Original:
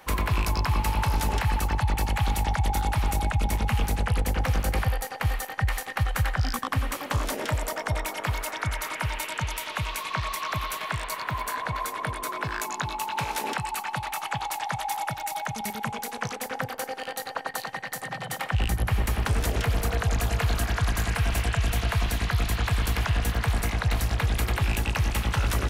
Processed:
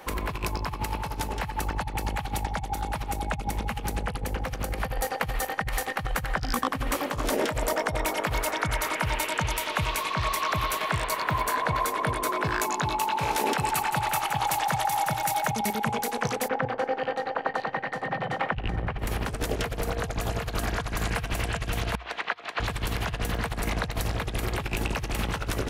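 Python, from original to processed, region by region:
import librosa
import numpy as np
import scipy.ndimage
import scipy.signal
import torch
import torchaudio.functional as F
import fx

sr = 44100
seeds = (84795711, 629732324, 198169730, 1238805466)

y = fx.chain(x, sr, fx.high_shelf(hz=7800.0, db=4.0),
    fx.echo_feedback(ms=168, feedback_pct=35, wet_db=-10), at=(13.41, 15.51))
y = fx.chain(y, sr, fx.lowpass(hz=2500.0, slope=12),
    fx.echo_single(ms=402, db=-16.0), at=(16.48, 18.99))
y = fx.chain(y, sr, fx.over_compress(threshold_db=-30.0, ratio=-0.5),
    fx.bandpass_edges(low_hz=640.0, high_hz=3000.0), at=(21.95, 22.6))
y = fx.peak_eq(y, sr, hz=400.0, db=6.0, octaves=1.8)
y = fx.hum_notches(y, sr, base_hz=60, count=2)
y = fx.over_compress(y, sr, threshold_db=-27.0, ratio=-0.5)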